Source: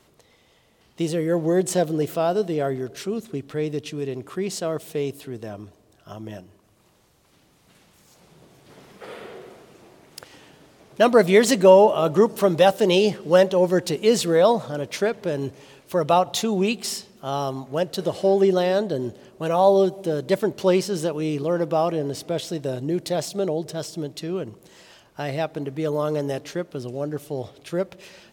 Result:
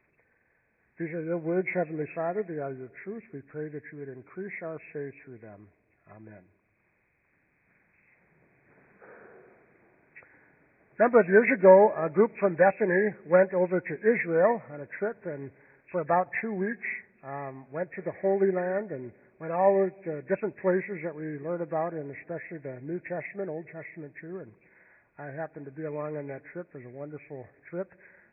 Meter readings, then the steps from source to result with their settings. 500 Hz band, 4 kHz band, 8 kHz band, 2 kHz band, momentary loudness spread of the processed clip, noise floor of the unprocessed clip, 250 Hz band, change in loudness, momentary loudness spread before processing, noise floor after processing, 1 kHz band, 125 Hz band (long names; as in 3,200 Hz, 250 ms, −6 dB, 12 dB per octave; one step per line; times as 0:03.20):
−6.0 dB, below −40 dB, below −40 dB, 0.0 dB, 19 LU, −59 dBFS, −8.0 dB, −5.5 dB, 14 LU, −70 dBFS, −6.0 dB, −9.0 dB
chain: hearing-aid frequency compression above 1,400 Hz 4 to 1
expander for the loud parts 1.5 to 1, over −28 dBFS
level −3 dB